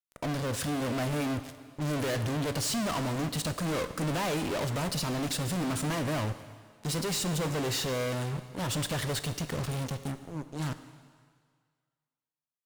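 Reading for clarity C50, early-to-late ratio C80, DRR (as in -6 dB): 12.0 dB, 13.0 dB, 10.5 dB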